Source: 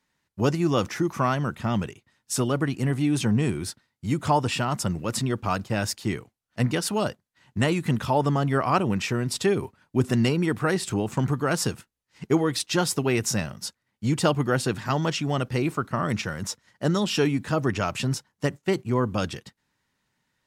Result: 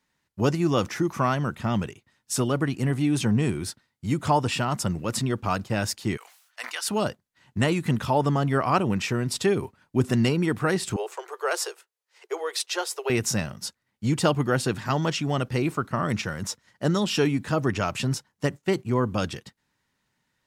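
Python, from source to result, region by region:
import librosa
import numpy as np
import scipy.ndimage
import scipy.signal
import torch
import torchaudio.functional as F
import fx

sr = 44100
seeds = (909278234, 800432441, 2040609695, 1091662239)

y = fx.chain(x, sr, fx.bessel_highpass(hz=1200.0, order=4),
    fx.sustainer(db_per_s=63.0), at=(6.17, 6.88))
y = fx.chain(y, sr, fx.tremolo(hz=1.8, depth=0.43),
    fx.steep_highpass(hz=370.0, slope=96), at=(10.96, 13.1))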